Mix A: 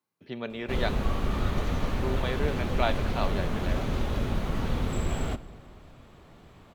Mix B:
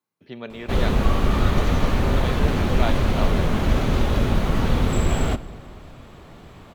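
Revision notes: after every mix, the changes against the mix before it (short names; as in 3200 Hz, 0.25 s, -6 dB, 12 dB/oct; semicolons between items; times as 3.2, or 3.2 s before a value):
background +8.5 dB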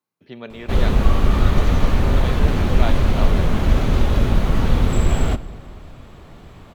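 background: add low shelf 89 Hz +6 dB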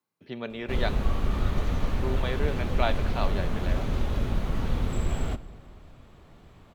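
background -10.5 dB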